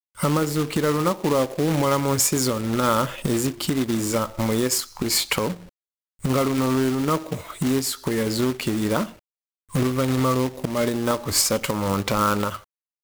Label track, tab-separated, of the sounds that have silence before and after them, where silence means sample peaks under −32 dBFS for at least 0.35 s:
6.240000	9.060000	sound
9.750000	12.560000	sound